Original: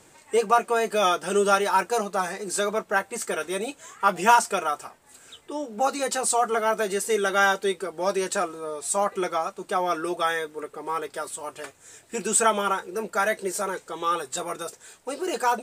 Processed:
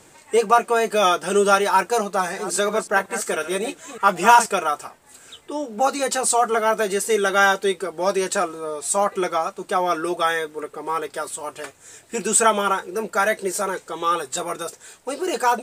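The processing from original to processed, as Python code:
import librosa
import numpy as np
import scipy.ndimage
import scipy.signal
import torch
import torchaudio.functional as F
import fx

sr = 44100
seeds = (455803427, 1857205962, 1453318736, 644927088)

y = fx.reverse_delay(x, sr, ms=184, wet_db=-11.0, at=(2.14, 4.46))
y = F.gain(torch.from_numpy(y), 4.0).numpy()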